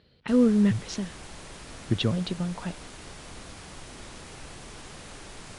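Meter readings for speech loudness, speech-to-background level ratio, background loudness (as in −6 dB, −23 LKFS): −26.5 LKFS, 17.0 dB, −43.5 LKFS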